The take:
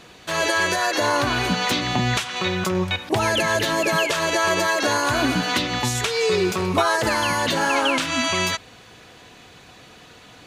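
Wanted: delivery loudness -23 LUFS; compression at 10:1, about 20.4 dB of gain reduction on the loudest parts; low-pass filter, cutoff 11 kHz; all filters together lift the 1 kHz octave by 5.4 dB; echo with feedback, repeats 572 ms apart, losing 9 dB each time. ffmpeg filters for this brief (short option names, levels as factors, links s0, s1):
-af "lowpass=11000,equalizer=f=1000:t=o:g=6.5,acompressor=threshold=0.0224:ratio=10,aecho=1:1:572|1144|1716|2288:0.355|0.124|0.0435|0.0152,volume=4.22"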